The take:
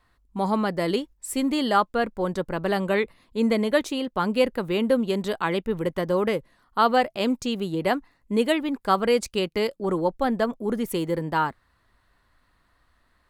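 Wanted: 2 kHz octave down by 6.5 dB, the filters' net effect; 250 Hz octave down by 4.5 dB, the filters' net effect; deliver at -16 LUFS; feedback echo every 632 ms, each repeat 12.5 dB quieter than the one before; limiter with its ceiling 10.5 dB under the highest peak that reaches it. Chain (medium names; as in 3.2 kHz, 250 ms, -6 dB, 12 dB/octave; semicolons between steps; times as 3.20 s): peaking EQ 250 Hz -5.5 dB; peaking EQ 2 kHz -8.5 dB; peak limiter -20 dBFS; feedback delay 632 ms, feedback 24%, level -12.5 dB; trim +14.5 dB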